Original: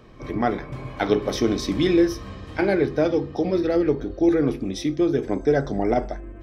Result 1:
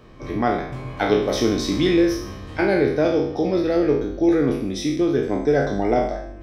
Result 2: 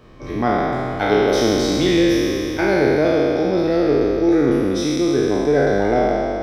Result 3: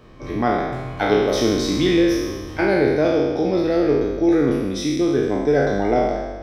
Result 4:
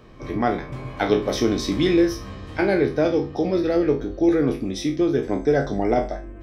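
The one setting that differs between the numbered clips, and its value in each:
spectral sustain, RT60: 0.66 s, 3.1 s, 1.38 s, 0.31 s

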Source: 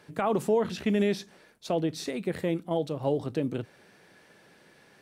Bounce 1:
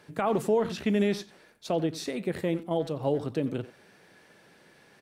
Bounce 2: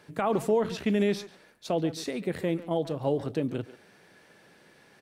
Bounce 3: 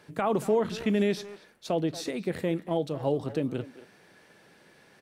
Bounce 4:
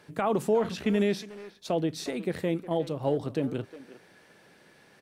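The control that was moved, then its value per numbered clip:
speakerphone echo, time: 90 ms, 140 ms, 230 ms, 360 ms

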